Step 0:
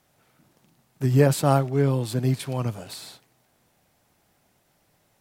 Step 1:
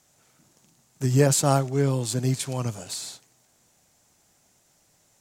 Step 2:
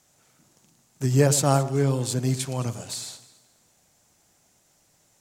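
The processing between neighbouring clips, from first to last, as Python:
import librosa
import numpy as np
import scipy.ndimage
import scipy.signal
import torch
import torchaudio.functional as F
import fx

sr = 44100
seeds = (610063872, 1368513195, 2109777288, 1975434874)

y1 = fx.peak_eq(x, sr, hz=6900.0, db=14.0, octaves=0.92)
y1 = y1 * librosa.db_to_amplitude(-1.5)
y2 = fx.echo_alternate(y1, sr, ms=108, hz=1200.0, feedback_pct=53, wet_db=-12.5)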